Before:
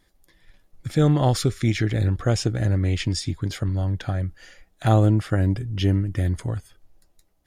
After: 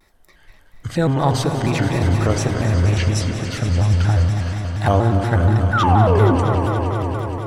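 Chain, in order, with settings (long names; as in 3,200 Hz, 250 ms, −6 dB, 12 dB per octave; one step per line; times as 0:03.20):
parametric band 1,000 Hz +7 dB 1.6 octaves
in parallel at +2 dB: downward compressor, threshold −30 dBFS, peak gain reduction 17.5 dB
on the sum: sound drawn into the spectrogram fall, 0:05.72–0:06.36, 270–1,400 Hz −16 dBFS
on a send: echo that builds up and dies away 94 ms, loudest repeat 5, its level −13 dB
on the sum: spring reverb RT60 3.5 s, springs 31 ms, chirp 65 ms, DRR 5.5 dB
pitch modulation by a square or saw wave square 4.2 Hz, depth 160 cents
level −2.5 dB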